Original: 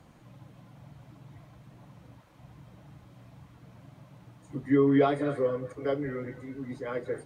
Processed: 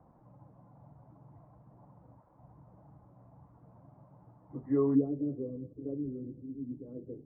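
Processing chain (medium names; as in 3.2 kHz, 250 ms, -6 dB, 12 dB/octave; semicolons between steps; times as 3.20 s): four-pole ladder low-pass 1.1 kHz, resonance 40%, from 4.94 s 360 Hz; trim +2 dB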